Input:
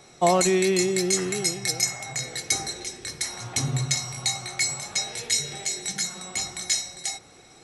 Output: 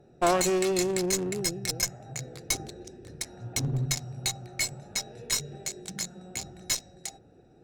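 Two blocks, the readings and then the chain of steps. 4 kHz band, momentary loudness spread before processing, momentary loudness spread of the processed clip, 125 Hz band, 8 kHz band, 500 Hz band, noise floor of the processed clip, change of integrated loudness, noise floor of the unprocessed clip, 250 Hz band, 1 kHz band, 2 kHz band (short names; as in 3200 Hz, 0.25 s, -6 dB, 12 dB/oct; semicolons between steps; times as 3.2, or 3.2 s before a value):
-6.0 dB, 10 LU, 14 LU, -2.0 dB, -5.5 dB, -3.5 dB, -57 dBFS, -4.5 dB, -51 dBFS, -3.5 dB, -4.0 dB, -5.5 dB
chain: Wiener smoothing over 41 samples; one-sided clip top -27.5 dBFS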